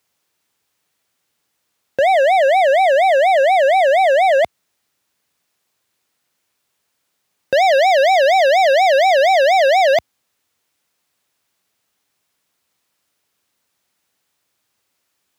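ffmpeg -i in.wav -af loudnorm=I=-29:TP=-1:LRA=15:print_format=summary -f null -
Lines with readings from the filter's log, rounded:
Input Integrated:    -13.2 LUFS
Input True Peak:      -7.5 dBTP
Input LRA:             7.1 LU
Input Threshold:     -28.1 LUFS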